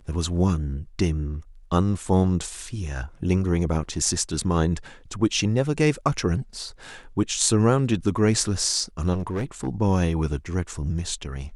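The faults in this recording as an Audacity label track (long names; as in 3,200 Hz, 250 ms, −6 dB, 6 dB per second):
9.130000	9.670000	clipping −22.5 dBFS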